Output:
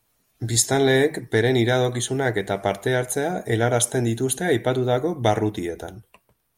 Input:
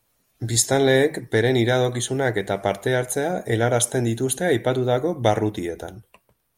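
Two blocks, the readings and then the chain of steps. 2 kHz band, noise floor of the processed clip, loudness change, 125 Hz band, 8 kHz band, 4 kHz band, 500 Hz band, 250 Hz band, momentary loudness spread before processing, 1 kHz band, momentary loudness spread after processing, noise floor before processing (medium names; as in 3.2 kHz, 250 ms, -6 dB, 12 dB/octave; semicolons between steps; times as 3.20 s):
0.0 dB, -69 dBFS, -0.5 dB, 0.0 dB, 0.0 dB, 0.0 dB, -1.0 dB, 0.0 dB, 7 LU, 0.0 dB, 7 LU, -69 dBFS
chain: band-stop 540 Hz, Q 12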